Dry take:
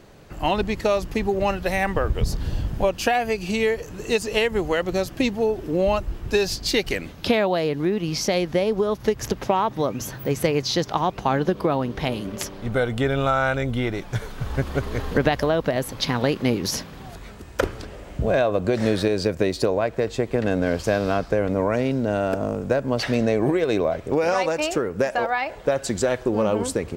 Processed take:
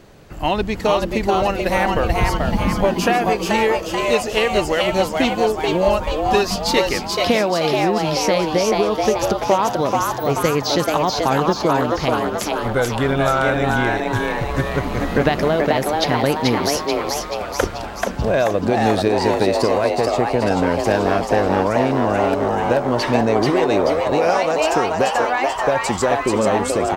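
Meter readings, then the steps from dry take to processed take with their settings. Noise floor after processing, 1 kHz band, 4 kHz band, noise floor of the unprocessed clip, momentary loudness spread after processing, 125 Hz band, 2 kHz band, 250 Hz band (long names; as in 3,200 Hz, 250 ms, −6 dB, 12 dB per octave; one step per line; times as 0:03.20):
−28 dBFS, +8.5 dB, +5.5 dB, −40 dBFS, 4 LU, +3.0 dB, +5.5 dB, +4.0 dB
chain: echo with shifted repeats 434 ms, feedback 57%, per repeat +150 Hz, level −3 dB
level +2.5 dB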